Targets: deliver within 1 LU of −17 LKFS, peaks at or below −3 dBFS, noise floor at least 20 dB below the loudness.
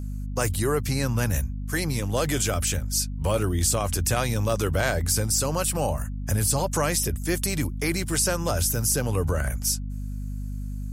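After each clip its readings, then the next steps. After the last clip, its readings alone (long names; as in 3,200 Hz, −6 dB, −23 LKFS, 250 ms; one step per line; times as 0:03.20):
mains hum 50 Hz; hum harmonics up to 250 Hz; level of the hum −29 dBFS; integrated loudness −25.0 LKFS; sample peak −10.0 dBFS; target loudness −17.0 LKFS
→ hum removal 50 Hz, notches 5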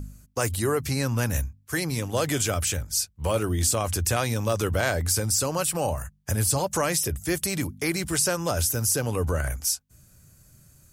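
mains hum none found; integrated loudness −25.5 LKFS; sample peak −10.0 dBFS; target loudness −17.0 LKFS
→ level +8.5 dB
brickwall limiter −3 dBFS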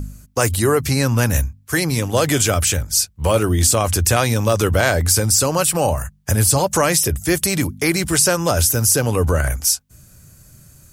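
integrated loudness −17.0 LKFS; sample peak −3.0 dBFS; background noise floor −51 dBFS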